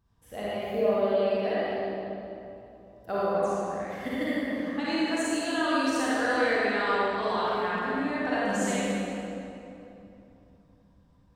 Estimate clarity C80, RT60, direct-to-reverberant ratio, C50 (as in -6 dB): -4.5 dB, 3.0 s, -9.5 dB, -7.0 dB